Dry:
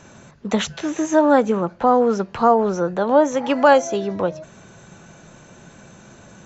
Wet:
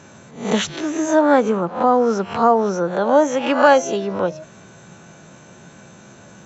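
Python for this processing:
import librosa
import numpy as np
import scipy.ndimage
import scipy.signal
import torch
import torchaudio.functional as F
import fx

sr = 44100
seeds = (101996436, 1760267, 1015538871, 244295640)

y = fx.spec_swells(x, sr, rise_s=0.42)
y = scipy.signal.sosfilt(scipy.signal.butter(2, 83.0, 'highpass', fs=sr, output='sos'), y)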